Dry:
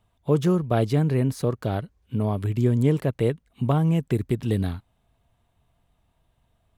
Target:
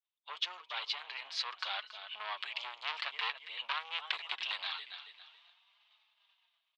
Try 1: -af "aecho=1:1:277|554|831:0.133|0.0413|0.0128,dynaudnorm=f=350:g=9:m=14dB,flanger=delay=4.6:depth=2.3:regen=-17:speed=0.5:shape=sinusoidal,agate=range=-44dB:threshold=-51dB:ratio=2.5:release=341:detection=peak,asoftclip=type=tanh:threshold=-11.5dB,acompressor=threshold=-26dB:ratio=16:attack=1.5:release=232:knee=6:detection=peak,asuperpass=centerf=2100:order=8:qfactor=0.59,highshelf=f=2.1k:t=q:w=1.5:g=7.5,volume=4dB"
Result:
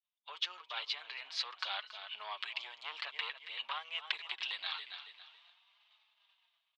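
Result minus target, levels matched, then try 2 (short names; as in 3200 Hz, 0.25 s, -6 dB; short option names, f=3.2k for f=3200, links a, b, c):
soft clip: distortion -7 dB
-af "aecho=1:1:277|554|831:0.133|0.0413|0.0128,dynaudnorm=f=350:g=9:m=14dB,flanger=delay=4.6:depth=2.3:regen=-17:speed=0.5:shape=sinusoidal,agate=range=-44dB:threshold=-51dB:ratio=2.5:release=341:detection=peak,asoftclip=type=tanh:threshold=-20dB,acompressor=threshold=-26dB:ratio=16:attack=1.5:release=232:knee=6:detection=peak,asuperpass=centerf=2100:order=8:qfactor=0.59,highshelf=f=2.1k:t=q:w=1.5:g=7.5,volume=4dB"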